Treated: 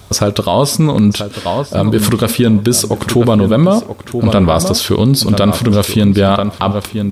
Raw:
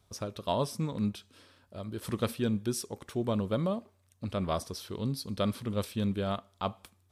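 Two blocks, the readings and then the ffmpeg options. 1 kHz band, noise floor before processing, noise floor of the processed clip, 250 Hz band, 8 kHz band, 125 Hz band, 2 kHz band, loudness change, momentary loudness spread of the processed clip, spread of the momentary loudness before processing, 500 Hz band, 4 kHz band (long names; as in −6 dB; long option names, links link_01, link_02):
+19.5 dB, −68 dBFS, −32 dBFS, +21.5 dB, +25.0 dB, +22.0 dB, +22.0 dB, +21.0 dB, 6 LU, 9 LU, +20.5 dB, +23.0 dB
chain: -filter_complex "[0:a]asplit=2[link_01][link_02];[link_02]acompressor=threshold=-40dB:ratio=6,volume=0dB[link_03];[link_01][link_03]amix=inputs=2:normalize=0,asplit=2[link_04][link_05];[link_05]adelay=983,lowpass=frequency=3100:poles=1,volume=-11.5dB,asplit=2[link_06][link_07];[link_07]adelay=983,lowpass=frequency=3100:poles=1,volume=0.16[link_08];[link_04][link_06][link_08]amix=inputs=3:normalize=0,alimiter=level_in=24dB:limit=-1dB:release=50:level=0:latency=1,volume=-1dB"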